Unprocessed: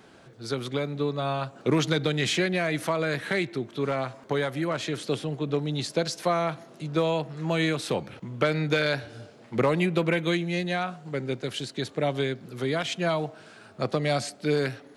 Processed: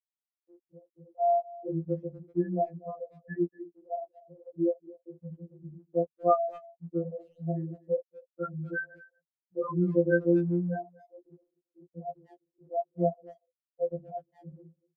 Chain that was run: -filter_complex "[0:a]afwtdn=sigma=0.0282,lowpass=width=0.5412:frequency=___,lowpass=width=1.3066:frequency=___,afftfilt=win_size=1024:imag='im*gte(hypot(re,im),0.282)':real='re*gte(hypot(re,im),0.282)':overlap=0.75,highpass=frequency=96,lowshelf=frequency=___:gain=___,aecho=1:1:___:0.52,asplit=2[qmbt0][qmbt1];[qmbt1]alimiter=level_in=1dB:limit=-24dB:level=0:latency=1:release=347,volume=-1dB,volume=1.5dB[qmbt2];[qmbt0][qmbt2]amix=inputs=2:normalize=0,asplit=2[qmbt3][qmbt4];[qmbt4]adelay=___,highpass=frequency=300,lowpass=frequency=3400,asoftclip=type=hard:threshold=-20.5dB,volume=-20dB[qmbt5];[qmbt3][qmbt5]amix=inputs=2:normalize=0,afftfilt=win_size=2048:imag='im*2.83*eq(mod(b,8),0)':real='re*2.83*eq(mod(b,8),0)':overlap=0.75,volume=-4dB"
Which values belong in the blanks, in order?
3400, 3400, 320, -11.5, 5.7, 240